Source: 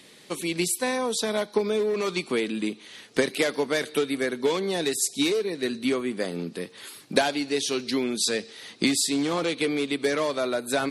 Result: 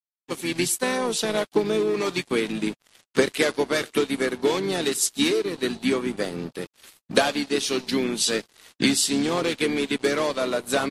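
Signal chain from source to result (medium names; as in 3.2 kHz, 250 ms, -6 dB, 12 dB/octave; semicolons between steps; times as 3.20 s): crossover distortion -40 dBFS; harmony voices -5 st -10 dB, -3 st -15 dB; trim +3 dB; MP3 56 kbps 32 kHz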